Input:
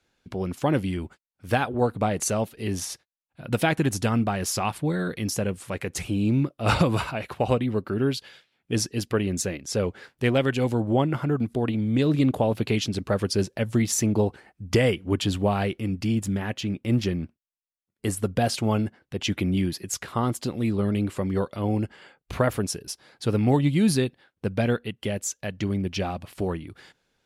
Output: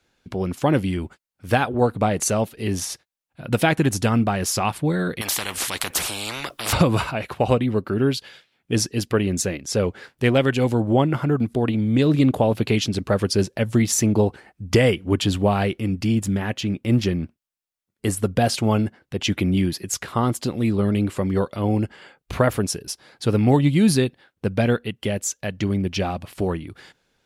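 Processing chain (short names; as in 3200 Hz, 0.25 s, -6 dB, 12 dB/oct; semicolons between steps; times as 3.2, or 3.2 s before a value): 5.21–6.73 spectral compressor 10:1; gain +4 dB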